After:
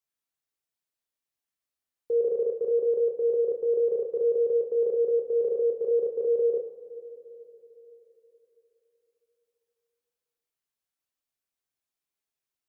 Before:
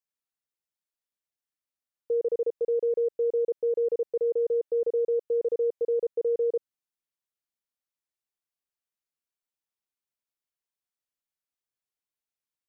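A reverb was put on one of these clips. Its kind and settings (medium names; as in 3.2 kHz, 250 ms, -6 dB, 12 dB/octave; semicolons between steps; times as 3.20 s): two-slope reverb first 0.53 s, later 4 s, from -15 dB, DRR 2 dB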